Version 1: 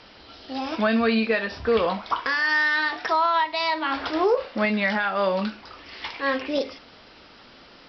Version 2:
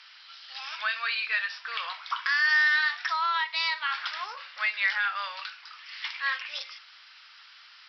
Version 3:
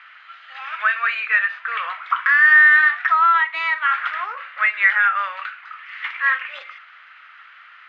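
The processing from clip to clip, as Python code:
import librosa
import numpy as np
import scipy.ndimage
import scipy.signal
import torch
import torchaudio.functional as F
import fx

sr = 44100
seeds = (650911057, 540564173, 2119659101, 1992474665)

y1 = scipy.signal.sosfilt(scipy.signal.butter(4, 1300.0, 'highpass', fs=sr, output='sos'), x)
y2 = fx.cheby_harmonics(y1, sr, harmonics=(6,), levels_db=(-35,), full_scale_db=-14.0)
y2 = np.repeat(y2[::4], 4)[:len(y2)]
y2 = fx.cabinet(y2, sr, low_hz=390.0, low_slope=24, high_hz=2500.0, hz=(910.0, 1300.0, 1900.0), db=(-5, 6, 4))
y2 = F.gain(torch.from_numpy(y2), 8.0).numpy()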